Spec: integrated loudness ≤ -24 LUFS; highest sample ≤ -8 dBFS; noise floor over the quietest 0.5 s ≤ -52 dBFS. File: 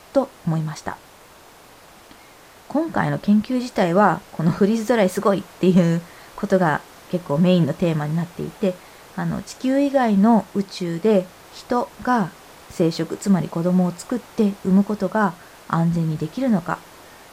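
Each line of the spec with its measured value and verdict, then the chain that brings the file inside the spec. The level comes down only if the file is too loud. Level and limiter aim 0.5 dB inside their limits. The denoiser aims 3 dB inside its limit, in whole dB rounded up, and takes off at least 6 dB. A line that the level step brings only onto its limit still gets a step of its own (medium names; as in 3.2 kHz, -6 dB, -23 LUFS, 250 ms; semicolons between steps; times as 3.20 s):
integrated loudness -21.0 LUFS: fail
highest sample -4.5 dBFS: fail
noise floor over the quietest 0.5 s -47 dBFS: fail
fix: noise reduction 6 dB, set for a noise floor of -47 dBFS; trim -3.5 dB; peak limiter -8.5 dBFS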